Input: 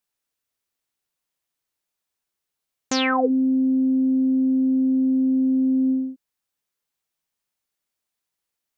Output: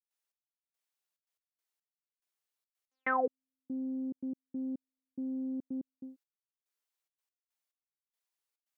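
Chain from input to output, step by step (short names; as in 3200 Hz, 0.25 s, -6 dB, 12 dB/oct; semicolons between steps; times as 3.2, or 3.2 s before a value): Bessel high-pass 440 Hz, order 4; step gate ".xx....xxxx.x." 142 bpm -60 dB; gain -7 dB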